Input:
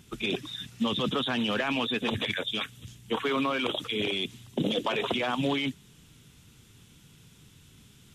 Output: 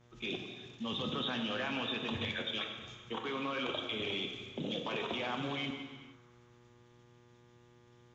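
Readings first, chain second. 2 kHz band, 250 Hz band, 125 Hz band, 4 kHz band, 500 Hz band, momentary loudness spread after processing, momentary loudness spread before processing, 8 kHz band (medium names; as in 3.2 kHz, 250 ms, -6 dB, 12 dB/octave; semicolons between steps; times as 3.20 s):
-7.0 dB, -9.0 dB, -7.5 dB, -6.5 dB, -8.5 dB, 8 LU, 7 LU, -10.5 dB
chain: elliptic low-pass 6.8 kHz, stop band 40 dB; level held to a coarse grid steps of 17 dB; mains buzz 120 Hz, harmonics 20, -61 dBFS -5 dB/octave; band-passed feedback delay 95 ms, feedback 79%, band-pass 1.3 kHz, level -16 dB; gated-style reverb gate 500 ms falling, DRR 3 dB; trim -4 dB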